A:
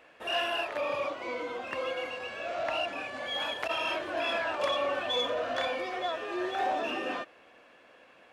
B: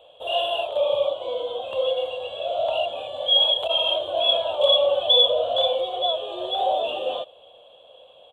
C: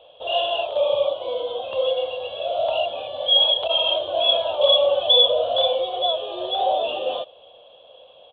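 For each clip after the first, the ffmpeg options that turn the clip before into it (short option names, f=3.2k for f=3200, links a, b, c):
-af "firequalizer=gain_entry='entry(100,0);entry(270,-17);entry(530,8);entry(1900,-30);entry(3300,14);entry(5100,-29);entry(7500,-6)':delay=0.05:min_phase=1,volume=5dB"
-af "aresample=11025,aresample=44100,volume=1.5dB"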